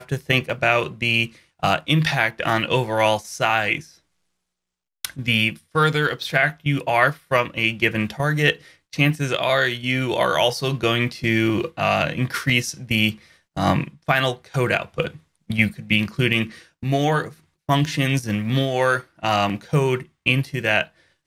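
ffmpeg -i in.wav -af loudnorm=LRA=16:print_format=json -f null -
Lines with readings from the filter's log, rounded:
"input_i" : "-21.1",
"input_tp" : "-1.8",
"input_lra" : "2.1",
"input_thresh" : "-31.4",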